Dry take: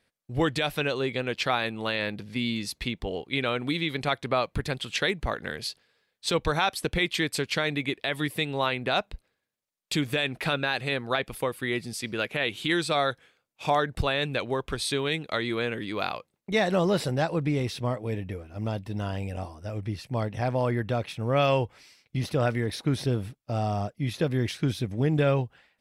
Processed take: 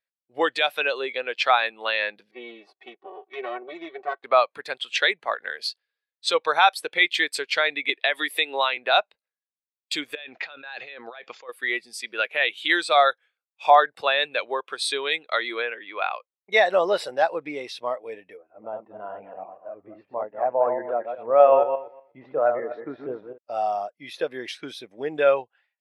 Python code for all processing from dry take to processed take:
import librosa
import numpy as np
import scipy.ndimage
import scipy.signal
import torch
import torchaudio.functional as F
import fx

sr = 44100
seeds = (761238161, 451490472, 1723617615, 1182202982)

y = fx.chain(x, sr, fx.lower_of_two(delay_ms=5.3),
    fx.bandpass_q(hz=370.0, q=0.59),
    fx.comb(ms=2.7, depth=0.47), at=(2.31, 4.24))
y = fx.chain(y, sr, fx.highpass(hz=170.0, slope=24),
    fx.band_squash(depth_pct=100), at=(7.89, 8.77))
y = fx.chain(y, sr, fx.over_compress(threshold_db=-36.0, ratio=-1.0),
    fx.brickwall_lowpass(high_hz=7400.0), at=(10.15, 11.49))
y = fx.chain(y, sr, fx.lowpass(hz=3400.0, slope=24),
    fx.low_shelf(hz=280.0, db=-5.5), at=(15.62, 16.12))
y = fx.chain(y, sr, fx.reverse_delay_fb(ms=121, feedback_pct=42, wet_db=-4),
    fx.lowpass(hz=1300.0, slope=12), at=(18.37, 23.38))
y = scipy.signal.sosfilt(scipy.signal.butter(2, 640.0, 'highpass', fs=sr, output='sos'), y)
y = fx.spectral_expand(y, sr, expansion=1.5)
y = y * 10.0 ** (8.0 / 20.0)